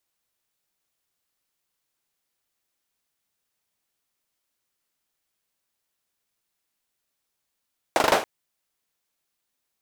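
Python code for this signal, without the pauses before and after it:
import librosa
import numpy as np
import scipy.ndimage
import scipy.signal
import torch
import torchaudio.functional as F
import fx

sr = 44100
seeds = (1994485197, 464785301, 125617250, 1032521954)

y = fx.drum_clap(sr, seeds[0], length_s=0.28, bursts=5, spacing_ms=40, hz=640.0, decay_s=0.36)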